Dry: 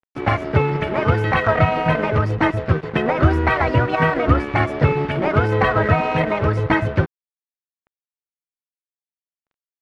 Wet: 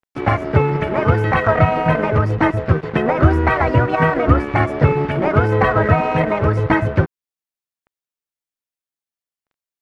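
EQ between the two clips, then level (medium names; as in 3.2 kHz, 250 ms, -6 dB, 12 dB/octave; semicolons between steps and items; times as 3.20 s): dynamic bell 3.7 kHz, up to -6 dB, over -38 dBFS, Q 0.9; +2.5 dB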